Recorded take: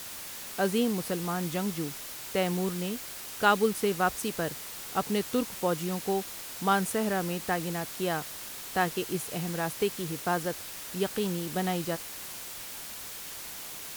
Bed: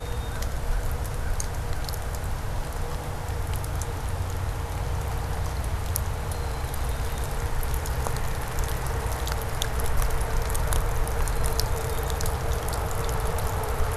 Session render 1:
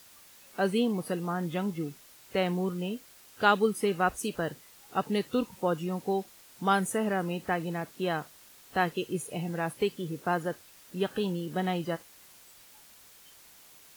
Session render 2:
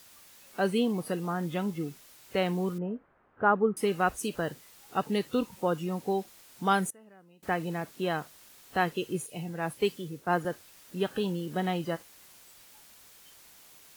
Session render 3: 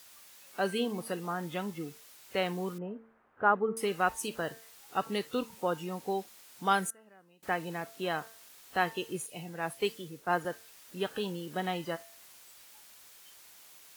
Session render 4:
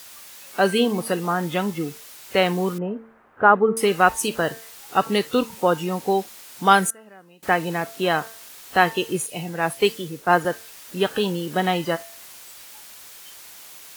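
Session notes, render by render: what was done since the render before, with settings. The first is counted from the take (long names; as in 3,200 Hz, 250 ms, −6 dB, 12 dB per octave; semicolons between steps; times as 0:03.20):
noise reduction from a noise print 14 dB
0:02.78–0:03.77: low-pass filter 1,500 Hz 24 dB per octave; 0:06.90–0:07.43: gate with flip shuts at −31 dBFS, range −26 dB; 0:09.26–0:10.45: multiband upward and downward expander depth 70%
low-shelf EQ 370 Hz −8.5 dB; hum removal 224.9 Hz, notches 9
level +12 dB; brickwall limiter −2 dBFS, peak gain reduction 2 dB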